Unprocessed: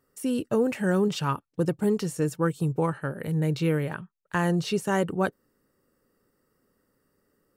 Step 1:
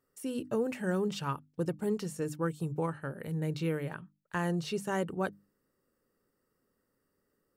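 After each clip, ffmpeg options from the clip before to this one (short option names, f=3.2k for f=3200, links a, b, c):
-af "bandreject=f=50:t=h:w=6,bandreject=f=100:t=h:w=6,bandreject=f=150:t=h:w=6,bandreject=f=200:t=h:w=6,bandreject=f=250:t=h:w=6,bandreject=f=300:t=h:w=6,volume=-7dB"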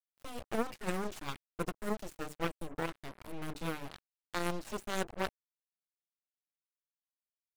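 -af "aeval=exprs='0.0944*(cos(1*acos(clip(val(0)/0.0944,-1,1)))-cos(1*PI/2))+0.0335*(cos(3*acos(clip(val(0)/0.0944,-1,1)))-cos(3*PI/2))+0.00596*(cos(8*acos(clip(val(0)/0.0944,-1,1)))-cos(8*PI/2))':c=same,acrusher=bits=7:mix=0:aa=0.5,volume=2.5dB"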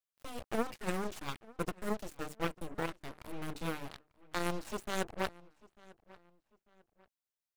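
-filter_complex "[0:a]asplit=2[a][b];[b]adelay=895,lowpass=f=3.5k:p=1,volume=-22dB,asplit=2[c][d];[d]adelay=895,lowpass=f=3.5k:p=1,volume=0.35[e];[a][c][e]amix=inputs=3:normalize=0"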